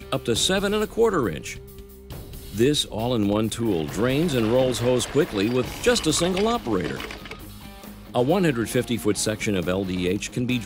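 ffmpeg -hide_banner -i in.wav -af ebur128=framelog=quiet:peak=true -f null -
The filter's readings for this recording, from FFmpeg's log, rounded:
Integrated loudness:
  I:         -23.0 LUFS
  Threshold: -33.8 LUFS
Loudness range:
  LRA:         2.9 LU
  Threshold: -43.7 LUFS
  LRA low:   -25.1 LUFS
  LRA high:  -22.2 LUFS
True peak:
  Peak:       -7.1 dBFS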